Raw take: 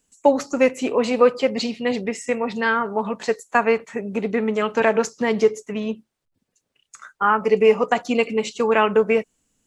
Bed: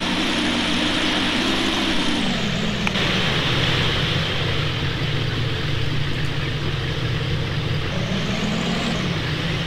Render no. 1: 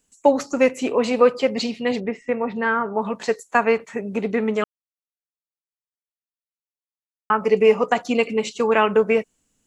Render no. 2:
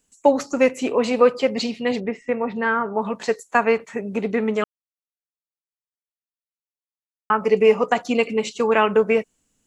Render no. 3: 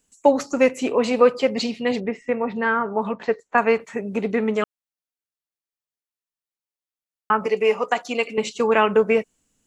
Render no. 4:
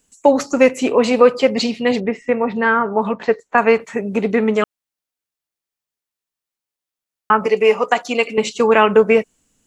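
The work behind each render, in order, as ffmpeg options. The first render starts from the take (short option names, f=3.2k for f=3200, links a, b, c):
-filter_complex "[0:a]asettb=1/sr,asplit=3[a][b][c];[a]atrim=end=2.004[d];[b]atrim=start=2:end=3.02,asetpts=PTS-STARTPTS,afade=t=in:d=0.004:c=qsin,afade=t=out:st=1.016:d=0.004:c=qsin,lowpass=2k[e];[c]atrim=start=3.016[f];[d][e]acrossfade=d=0.004:c1=hsin:c2=qsin[g];[g][f]acrossfade=d=0.004:c1=qsin:c2=hsin,asplit=3[h][i][j];[h]atrim=end=4.64,asetpts=PTS-STARTPTS,afade=t=out:st=4.636:d=0.004:c=hsin[k];[i]atrim=start=4.64:end=7.3,asetpts=PTS-STARTPTS,volume=0[l];[j]atrim=start=7.3,asetpts=PTS-STARTPTS,afade=t=in:d=0.004:c=hsin[m];[k][l][m]concat=n=3:v=0:a=1"
-af anull
-filter_complex "[0:a]asettb=1/sr,asplit=3[a][b][c];[a]atrim=end=3.124[d];[b]atrim=start=3.12:end=3.58,asetpts=PTS-STARTPTS,afade=t=in:d=0.004:c=qsin,afade=t=out:st=0.456:d=0.004:c=qsin,lowpass=2.4k[e];[c]atrim=start=3.576[f];[d][e]acrossfade=d=0.004:c1=hsin:c2=qsin[g];[g][f]acrossfade=d=0.004:c1=qsin:c2=hsin,asettb=1/sr,asplit=3[h][i][j];[h]atrim=end=7.464[k];[i]atrim=start=7.46:end=8.38,asetpts=PTS-STARTPTS,afade=t=in:d=0.004:c=qsin,afade=t=out:st=0.916:d=0.004:c=qsin,highpass=f=570:p=1[l];[j]atrim=start=8.376[m];[k][l]acrossfade=d=0.004:c1=hsin:c2=qsin[n];[n][m]acrossfade=d=0.004:c1=qsin:c2=hsin"
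-af "volume=5.5dB,alimiter=limit=-1dB:level=0:latency=1"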